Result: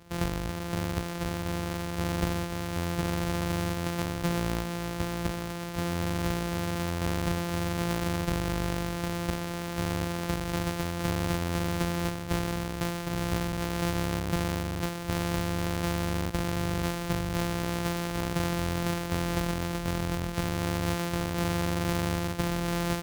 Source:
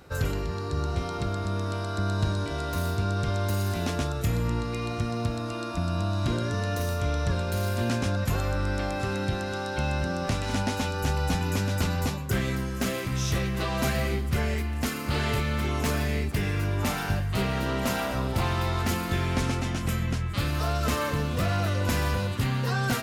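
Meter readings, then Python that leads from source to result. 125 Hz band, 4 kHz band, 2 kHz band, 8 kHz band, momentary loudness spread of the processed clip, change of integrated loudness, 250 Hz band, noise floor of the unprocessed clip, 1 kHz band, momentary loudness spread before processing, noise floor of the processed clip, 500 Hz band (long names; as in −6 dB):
−4.5 dB, −2.0 dB, −3.0 dB, −1.0 dB, 3 LU, −2.5 dB, 0.0 dB, −32 dBFS, −2.5 dB, 3 LU, −35 dBFS, −2.0 dB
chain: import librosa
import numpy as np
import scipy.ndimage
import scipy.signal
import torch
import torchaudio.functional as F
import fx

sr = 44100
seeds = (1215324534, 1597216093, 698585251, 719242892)

y = np.r_[np.sort(x[:len(x) // 256 * 256].reshape(-1, 256), axis=1).ravel(), x[len(x) // 256 * 256:]]
y = y * librosa.db_to_amplitude(-3.0)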